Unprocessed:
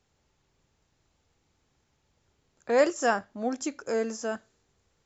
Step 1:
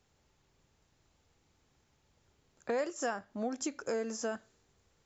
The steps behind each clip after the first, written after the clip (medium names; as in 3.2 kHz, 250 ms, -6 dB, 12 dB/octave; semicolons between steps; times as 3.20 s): compression 5:1, threshold -32 dBFS, peak gain reduction 13.5 dB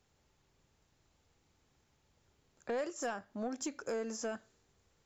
saturation -27.5 dBFS, distortion -19 dB; trim -1.5 dB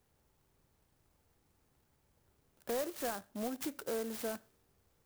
sampling jitter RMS 0.088 ms